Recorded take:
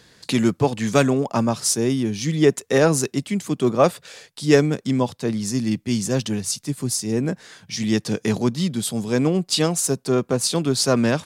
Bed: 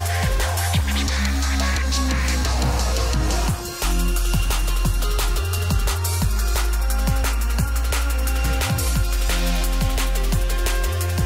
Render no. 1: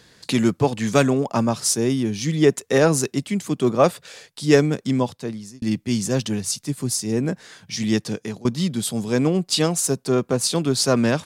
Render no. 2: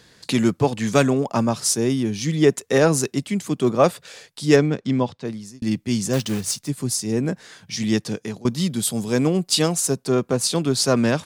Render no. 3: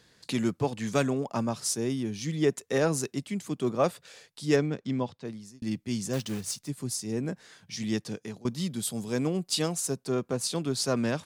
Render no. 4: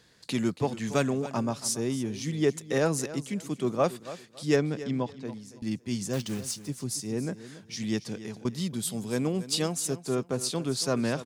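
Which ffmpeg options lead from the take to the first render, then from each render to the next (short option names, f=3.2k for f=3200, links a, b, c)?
-filter_complex "[0:a]asplit=3[a][b][c];[a]atrim=end=5.62,asetpts=PTS-STARTPTS,afade=t=out:st=4.98:d=0.64[d];[b]atrim=start=5.62:end=8.45,asetpts=PTS-STARTPTS,afade=t=in:d=0.004:c=hsin,afade=t=out:st=2.33:d=0.5:silence=0.0891251[e];[c]atrim=start=8.45,asetpts=PTS-STARTPTS,afade=t=in:d=0.004:c=hsin:silence=0.0891251[f];[d][e][f]concat=n=3:v=0:a=1"
-filter_complex "[0:a]asettb=1/sr,asplit=3[a][b][c];[a]atrim=end=4.564[d];[b]atrim=start=4.56:end=5.25,asetpts=PTS-STARTPTS,afade=t=in:d=0.004:c=qsin,afade=t=out:st=0.686:d=0.004:c=qsin,lowpass=4.5k[e];[c]atrim=start=5.246[f];[d][e]acrossfade=d=0.004:c1=hsin:c2=qsin[g];[g][f]acrossfade=d=0.004:c1=qsin:c2=hsin,asettb=1/sr,asplit=3[h][i][j];[h]atrim=end=6.134[k];[i]atrim=start=6.13:end=6.68,asetpts=PTS-STARTPTS,afade=t=in:d=0.004:c=qsin,afade=t=out:st=0.546:d=0.004:c=qsin,acrusher=bits=3:mode=log:mix=0:aa=0.000001[l];[j]atrim=start=6.676[m];[k][l]acrossfade=d=0.004:c1=hsin:c2=qsin[n];[n][m]acrossfade=d=0.004:c1=qsin:c2=hsin,asettb=1/sr,asplit=3[o][p][q];[o]atrim=end=8.504[r];[p]atrim=start=8.5:end=9.75,asetpts=PTS-STARTPTS,afade=t=in:d=0.004:c=qsin,afade=t=out:st=1.246:d=0.004:c=qsin,highshelf=f=8.6k:g=7.5[s];[q]atrim=start=9.746[t];[r][s]acrossfade=d=0.004:c1=hsin:c2=qsin[u];[u][t]acrossfade=d=0.004:c1=qsin:c2=hsin"
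-af "volume=-9dB"
-af "aecho=1:1:279|558|837:0.178|0.0445|0.0111"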